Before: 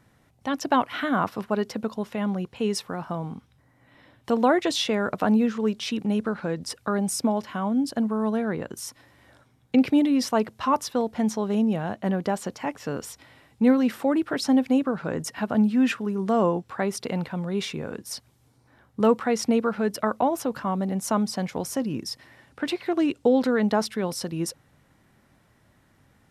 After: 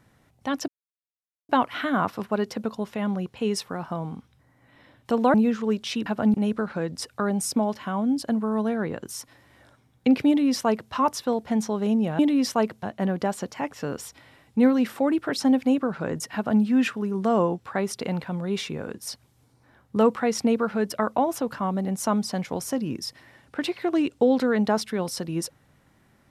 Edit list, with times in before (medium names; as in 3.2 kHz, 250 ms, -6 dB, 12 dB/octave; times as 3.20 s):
0.68 s: insert silence 0.81 s
4.53–5.30 s: delete
9.96–10.60 s: copy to 11.87 s
15.38–15.66 s: copy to 6.02 s